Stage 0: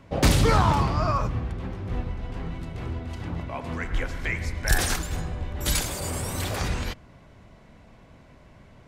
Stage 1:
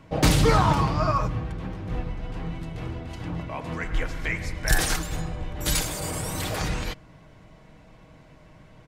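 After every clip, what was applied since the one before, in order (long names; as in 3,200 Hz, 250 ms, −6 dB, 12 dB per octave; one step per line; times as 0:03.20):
comb filter 6.4 ms, depth 43%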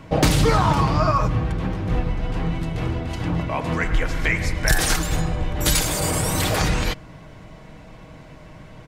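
downward compressor 3 to 1, threshold −24 dBFS, peak gain reduction 8 dB
level +8.5 dB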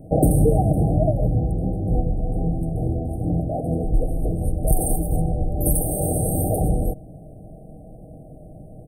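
linear-phase brick-wall band-stop 800–8,300 Hz
level +1.5 dB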